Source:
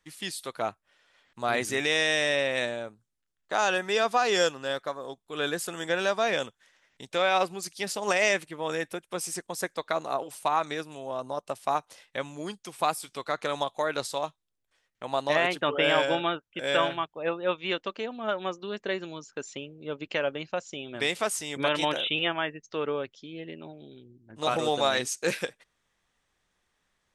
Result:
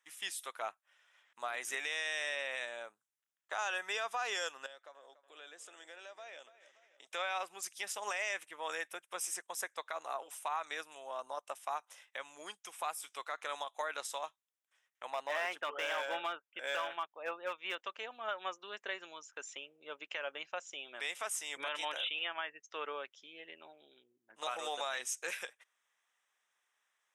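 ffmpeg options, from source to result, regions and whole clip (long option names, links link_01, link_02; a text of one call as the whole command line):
ffmpeg -i in.wav -filter_complex "[0:a]asettb=1/sr,asplit=3[link_01][link_02][link_03];[link_01]atrim=end=4.664[link_04];[link_02]atrim=start=4.66:end=7.07,asetpts=PTS-STARTPTS,afade=type=in:duration=0.004:curve=qsin,afade=type=out:start_time=2.406:duration=0.004:curve=qsin,highpass=200,equalizer=frequency=330:width_type=q:width=4:gain=4,equalizer=frequency=610:width_type=q:width=4:gain=4,equalizer=frequency=1100:width_type=q:width=4:gain=-5,equalizer=frequency=1600:width_type=q:width=4:gain=-3,lowpass=frequency=8700:width=0.5412,lowpass=frequency=8700:width=1.3066,acompressor=threshold=-48dB:ratio=2.5:attack=3.2:release=140:knee=1:detection=peak,asplit=2[link_05][link_06];[link_06]adelay=287,lowpass=frequency=3600:poles=1,volume=-14.5dB,asplit=2[link_07][link_08];[link_08]adelay=287,lowpass=frequency=3600:poles=1,volume=0.54,asplit=2[link_09][link_10];[link_10]adelay=287,lowpass=frequency=3600:poles=1,volume=0.54,asplit=2[link_11][link_12];[link_12]adelay=287,lowpass=frequency=3600:poles=1,volume=0.54,asplit=2[link_13][link_14];[link_14]adelay=287,lowpass=frequency=3600:poles=1,volume=0.54[link_15];[link_05][link_07][link_09][link_11][link_13][link_15]amix=inputs=6:normalize=0,atrim=end_sample=106281[link_16];[link_03]atrim=start=7.066[link_17];[link_04][link_16]acrossfade=duration=0.004:curve1=hsin:curve2=qsin[link_18];[link_18][link_17]acrossfade=duration=0.004:curve1=qsin:curve2=hsin,asettb=1/sr,asplit=3[link_19][link_20][link_21];[link_19]atrim=end=15.104[link_22];[link_20]atrim=start=15.1:end=17.79,asetpts=PTS-STARTPTS,afade=type=in:duration=0.004:curve=qsin,afade=type=out:start_time=2.686:duration=0.004:curve=qsin,highshelf=frequency=3400:gain=-8.5,volume=21dB,asoftclip=hard,volume=-21dB[link_23];[link_21]atrim=start=17.786[link_24];[link_22][link_23]acrossfade=duration=0.004:curve1=hsin:curve2=qsin[link_25];[link_25][link_24]acrossfade=duration=0.004:curve1=qsin:curve2=hsin,highpass=860,equalizer=frequency=4400:width=5.2:gain=-14.5,alimiter=limit=-23.5dB:level=0:latency=1:release=171,volume=-3dB" out.wav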